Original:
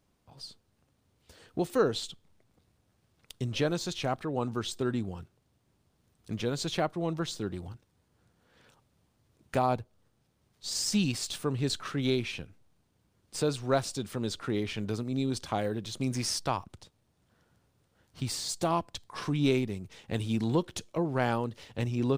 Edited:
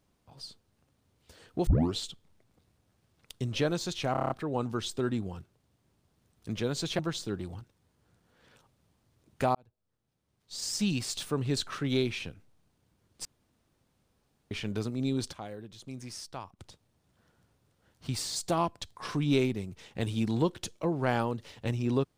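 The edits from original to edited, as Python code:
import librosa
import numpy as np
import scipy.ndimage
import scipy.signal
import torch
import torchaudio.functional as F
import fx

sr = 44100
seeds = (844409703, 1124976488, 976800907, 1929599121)

y = fx.edit(x, sr, fx.tape_start(start_s=1.67, length_s=0.28),
    fx.stutter(start_s=4.12, slice_s=0.03, count=7),
    fx.cut(start_s=6.81, length_s=0.31),
    fx.fade_in_span(start_s=9.68, length_s=1.62),
    fx.room_tone_fill(start_s=13.38, length_s=1.26),
    fx.clip_gain(start_s=15.46, length_s=1.26, db=-11.0), tone=tone)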